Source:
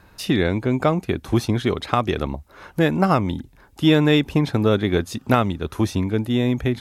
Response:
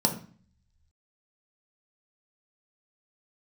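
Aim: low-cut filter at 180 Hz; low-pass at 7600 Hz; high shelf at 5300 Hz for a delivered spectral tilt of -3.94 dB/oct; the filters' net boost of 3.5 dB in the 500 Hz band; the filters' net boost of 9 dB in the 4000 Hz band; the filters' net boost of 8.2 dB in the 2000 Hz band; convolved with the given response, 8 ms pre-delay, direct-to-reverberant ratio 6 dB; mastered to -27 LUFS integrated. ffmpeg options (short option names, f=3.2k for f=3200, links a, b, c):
-filter_complex "[0:a]highpass=180,lowpass=7.6k,equalizer=f=500:t=o:g=4,equalizer=f=2k:t=o:g=7.5,equalizer=f=4k:t=o:g=5.5,highshelf=f=5.3k:g=8,asplit=2[a][b];[1:a]atrim=start_sample=2205,adelay=8[c];[b][c]afir=irnorm=-1:irlink=0,volume=-16.5dB[d];[a][d]amix=inputs=2:normalize=0,volume=-10.5dB"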